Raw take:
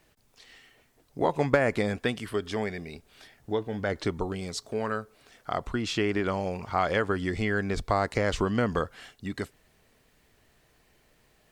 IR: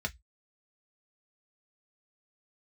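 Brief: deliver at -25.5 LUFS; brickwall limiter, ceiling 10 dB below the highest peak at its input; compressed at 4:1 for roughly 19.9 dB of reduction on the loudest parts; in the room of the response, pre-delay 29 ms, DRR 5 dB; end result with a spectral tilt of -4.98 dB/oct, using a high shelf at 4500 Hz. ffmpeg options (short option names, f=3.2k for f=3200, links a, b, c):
-filter_complex "[0:a]highshelf=f=4.5k:g=-3.5,acompressor=threshold=-43dB:ratio=4,alimiter=level_in=11dB:limit=-24dB:level=0:latency=1,volume=-11dB,asplit=2[a][b];[1:a]atrim=start_sample=2205,adelay=29[c];[b][c]afir=irnorm=-1:irlink=0,volume=-9dB[d];[a][d]amix=inputs=2:normalize=0,volume=20dB"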